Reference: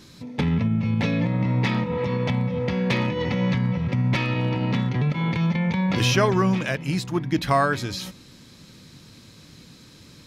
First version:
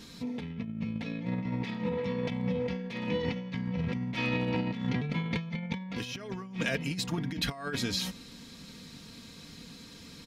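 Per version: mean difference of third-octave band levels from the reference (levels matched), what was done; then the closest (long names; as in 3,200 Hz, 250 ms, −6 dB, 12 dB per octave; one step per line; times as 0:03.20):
6.0 dB: parametric band 3,100 Hz +2 dB 0.97 octaves
comb filter 4.3 ms, depth 53%
dynamic equaliser 980 Hz, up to −4 dB, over −38 dBFS, Q 1
compressor whose output falls as the input rises −26 dBFS, ratio −0.5
level −6 dB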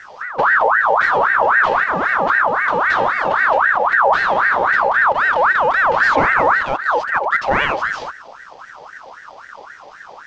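12.0 dB: variable-slope delta modulation 32 kbit/s
spectral tilt −3 dB per octave
in parallel at 0 dB: brickwall limiter −16.5 dBFS, peak gain reduction 12.5 dB
on the sum: ring modulator whose carrier an LFO sweeps 1,200 Hz, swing 45%, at 3.8 Hz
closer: first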